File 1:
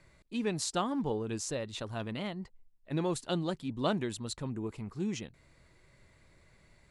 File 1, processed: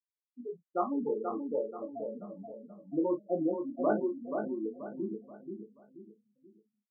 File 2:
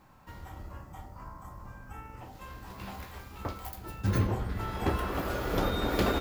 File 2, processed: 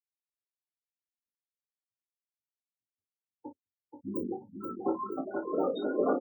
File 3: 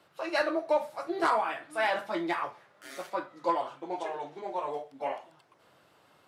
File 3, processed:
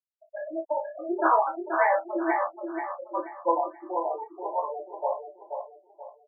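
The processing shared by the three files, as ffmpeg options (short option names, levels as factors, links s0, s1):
-filter_complex "[0:a]dynaudnorm=f=440:g=3:m=3.55,afftfilt=real='re*gte(hypot(re,im),0.355)':imag='im*gte(hypot(re,im),0.355)':win_size=1024:overlap=0.75,asplit=2[s0][s1];[s1]adelay=34,volume=0.355[s2];[s0][s2]amix=inputs=2:normalize=0,adynamicequalizer=threshold=0.00355:dfrequency=4100:dqfactor=4.9:tfrequency=4100:tqfactor=4.9:attack=5:release=100:ratio=0.375:range=2:mode=cutabove:tftype=bell,highpass=f=270:w=0.5412,highpass=f=270:w=1.3066,flanger=delay=18.5:depth=2.6:speed=1.5,afftdn=nr=20:nf=-49,aecho=1:1:481|962|1443|1924:0.501|0.18|0.065|0.0234,volume=0.668"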